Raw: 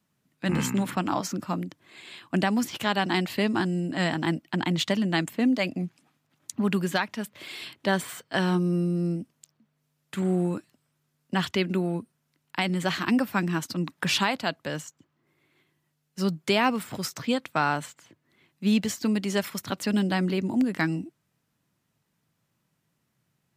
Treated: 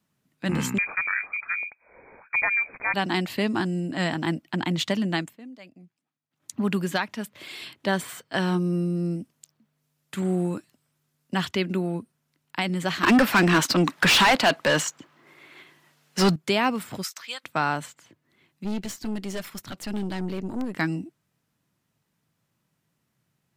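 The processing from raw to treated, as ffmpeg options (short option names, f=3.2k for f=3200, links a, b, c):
-filter_complex "[0:a]asettb=1/sr,asplit=3[a][b][c];[a]atrim=end=0.784[d];[b]atrim=start=0.78:end=2.94,asetpts=PTS-STARTPTS,afade=t=in:d=0.004:c=qsin,afade=t=out:st=2.156:d=0.004:c=qsin,lowpass=f=2.2k:t=q:w=0.5098,lowpass=f=2.2k:t=q:w=0.6013,lowpass=f=2.2k:t=q:w=0.9,lowpass=f=2.2k:t=q:w=2.563,afreqshift=-2600[e];[c]atrim=start=2.936[f];[d][e]acrossfade=d=0.004:c1=hsin:c2=qsin[g];[g][f]acrossfade=d=0.004:c1=qsin:c2=hsin,asettb=1/sr,asplit=3[h][i][j];[h]atrim=end=9.124[k];[i]atrim=start=9.12:end=11.43,asetpts=PTS-STARTPTS,afade=t=in:d=0.004:c=qsin,afade=t=out:st=2.306:d=0.004:c=qsin,highshelf=f=4.7k:g=3.5[l];[j]atrim=start=11.426[m];[k][l]acrossfade=d=0.004:c1=hsin:c2=qsin[n];[n][m]acrossfade=d=0.004:c1=qsin:c2=hsin,asettb=1/sr,asplit=3[o][p][q];[o]atrim=end=13.034[r];[p]atrim=start=13.03:end=16.36,asetpts=PTS-STARTPTS,afade=t=in:d=0.004:c=qsin,afade=t=out:st=3.326:d=0.004:c=qsin,asplit=2[s][t];[t]highpass=f=720:p=1,volume=27dB,asoftclip=type=tanh:threshold=-9dB[u];[s][u]amix=inputs=2:normalize=0,lowpass=f=3.8k:p=1,volume=-6dB[v];[q]atrim=start=16.356[w];[r][v]acrossfade=d=0.004:c1=hsin:c2=qsin[x];[x][w]acrossfade=d=0.004:c1=qsin:c2=hsin,asplit=3[y][z][aa];[y]afade=t=out:st=17.02:d=0.02[ab];[z]highpass=1.3k,afade=t=in:st=17.02:d=0.02,afade=t=out:st=17.43:d=0.02[ac];[aa]afade=t=in:st=17.43:d=0.02[ad];[ab][ac][ad]amix=inputs=3:normalize=0,asettb=1/sr,asplit=3[ae][af][ag];[ae]atrim=end=18.644[ah];[af]atrim=start=18.64:end=20.77,asetpts=PTS-STARTPTS,afade=t=in:d=0.004:c=qsin,afade=t=out:st=2.126:d=0.004:c=qsin,aeval=exprs='(tanh(20*val(0)+0.7)-tanh(0.7))/20':c=same[ai];[ag]atrim=start=20.766[aj];[ah][ai]acrossfade=d=0.004:c1=hsin:c2=qsin[ak];[ak][aj]acrossfade=d=0.004:c1=qsin:c2=hsin,asplit=3[al][am][an];[al]atrim=end=5.37,asetpts=PTS-STARTPTS,afade=t=out:st=5.13:d=0.24:silence=0.1[ao];[am]atrim=start=5.37:end=6.3,asetpts=PTS-STARTPTS,volume=-20dB[ap];[an]atrim=start=6.3,asetpts=PTS-STARTPTS,afade=t=in:d=0.24:silence=0.1[aq];[ao][ap][aq]concat=n=3:v=0:a=1"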